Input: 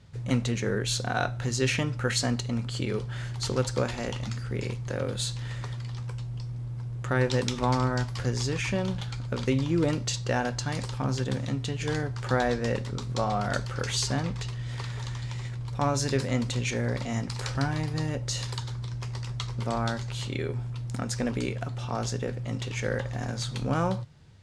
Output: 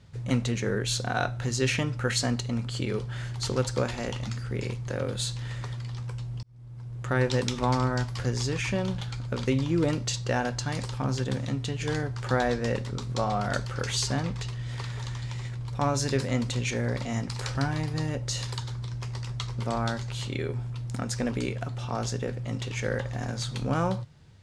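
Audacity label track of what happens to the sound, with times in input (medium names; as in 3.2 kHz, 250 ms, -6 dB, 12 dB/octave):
6.430000	7.120000	fade in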